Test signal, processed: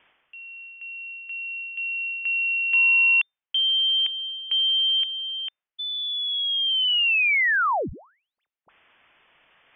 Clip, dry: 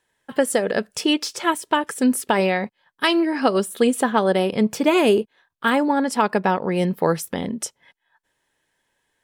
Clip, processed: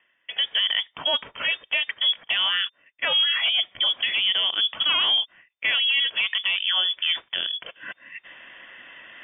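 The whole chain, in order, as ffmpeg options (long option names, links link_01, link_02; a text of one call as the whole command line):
ffmpeg -i in.wav -filter_complex "[0:a]areverse,acompressor=mode=upward:threshold=-26dB:ratio=2.5,areverse,asplit=2[link_01][link_02];[link_02]highpass=frequency=720:poles=1,volume=12dB,asoftclip=type=tanh:threshold=-5dB[link_03];[link_01][link_03]amix=inputs=2:normalize=0,lowpass=frequency=2400:poles=1,volume=-6dB,alimiter=limit=-13.5dB:level=0:latency=1:release=25,lowpass=frequency=3100:width_type=q:width=0.5098,lowpass=frequency=3100:width_type=q:width=0.6013,lowpass=frequency=3100:width_type=q:width=0.9,lowpass=frequency=3100:width_type=q:width=2.563,afreqshift=-3600,volume=-1.5dB" out.wav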